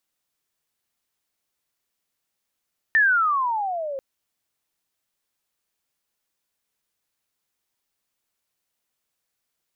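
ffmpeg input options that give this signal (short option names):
-f lavfi -i "aevalsrc='pow(10,(-13.5-14*t/1.04)/20)*sin(2*PI*1820*1.04/(-21.5*log(2)/12)*(exp(-21.5*log(2)/12*t/1.04)-1))':d=1.04:s=44100"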